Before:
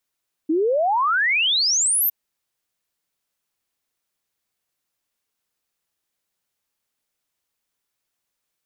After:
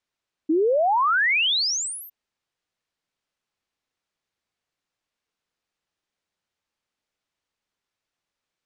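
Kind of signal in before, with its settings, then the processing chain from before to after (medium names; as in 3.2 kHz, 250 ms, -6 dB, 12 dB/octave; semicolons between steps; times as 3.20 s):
log sweep 300 Hz -> 14 kHz 1.61 s -16.5 dBFS
distance through air 91 m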